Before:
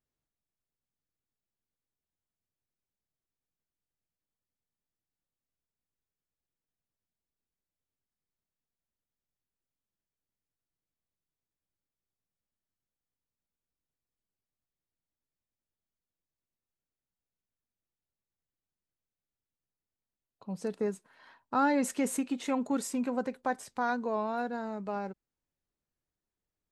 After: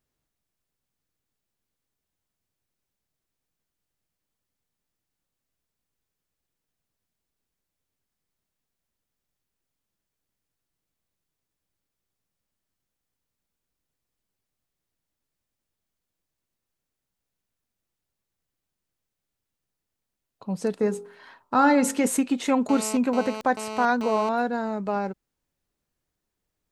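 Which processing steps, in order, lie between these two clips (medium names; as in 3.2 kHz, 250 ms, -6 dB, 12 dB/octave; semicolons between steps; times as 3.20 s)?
20.76–22.07 s: de-hum 45.34 Hz, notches 31; 22.69–24.29 s: mobile phone buzz -42 dBFS; trim +8.5 dB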